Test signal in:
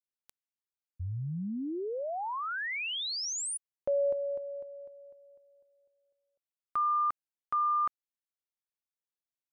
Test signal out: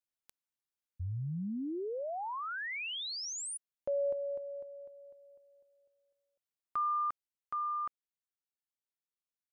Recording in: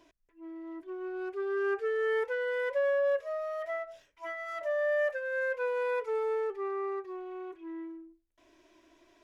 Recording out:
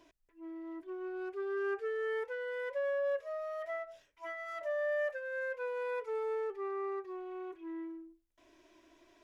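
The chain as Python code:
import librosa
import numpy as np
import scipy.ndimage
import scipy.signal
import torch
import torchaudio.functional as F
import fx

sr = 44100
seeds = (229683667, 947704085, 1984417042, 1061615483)

y = fx.rider(x, sr, range_db=4, speed_s=2.0)
y = F.gain(torch.from_numpy(y), -5.0).numpy()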